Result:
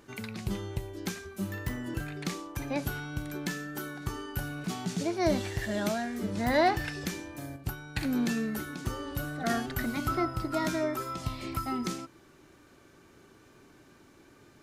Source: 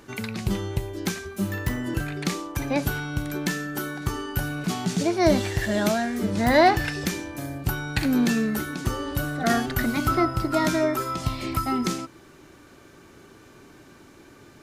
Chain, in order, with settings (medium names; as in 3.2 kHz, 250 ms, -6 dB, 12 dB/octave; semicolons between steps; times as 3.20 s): wow and flutter 16 cents; 7.56–7.98 s: upward expansion 1.5:1, over -31 dBFS; trim -7.5 dB